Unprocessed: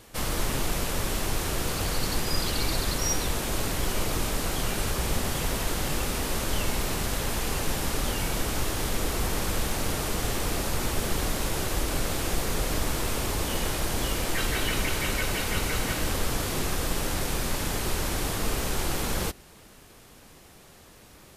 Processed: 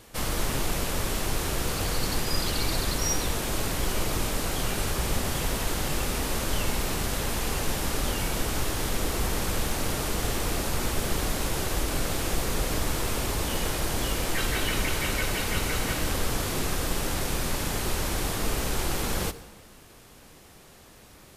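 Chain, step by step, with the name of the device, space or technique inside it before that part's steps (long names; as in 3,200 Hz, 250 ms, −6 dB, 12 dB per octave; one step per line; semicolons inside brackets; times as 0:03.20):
saturated reverb return (on a send at −13 dB: convolution reverb RT60 1.2 s, pre-delay 52 ms + soft clipping −23.5 dBFS, distortion −15 dB)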